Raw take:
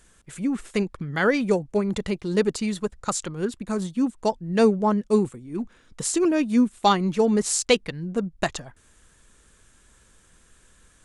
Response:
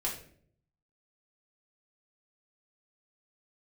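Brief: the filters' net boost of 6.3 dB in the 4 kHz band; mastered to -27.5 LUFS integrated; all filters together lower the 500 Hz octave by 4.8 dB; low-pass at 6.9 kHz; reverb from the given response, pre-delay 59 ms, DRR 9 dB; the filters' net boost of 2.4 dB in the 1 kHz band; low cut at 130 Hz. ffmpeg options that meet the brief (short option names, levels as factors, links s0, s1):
-filter_complex "[0:a]highpass=130,lowpass=6900,equalizer=f=500:t=o:g=-7,equalizer=f=1000:t=o:g=5,equalizer=f=4000:t=o:g=8,asplit=2[s0][s1];[1:a]atrim=start_sample=2205,adelay=59[s2];[s1][s2]afir=irnorm=-1:irlink=0,volume=0.224[s3];[s0][s3]amix=inputs=2:normalize=0,volume=0.708"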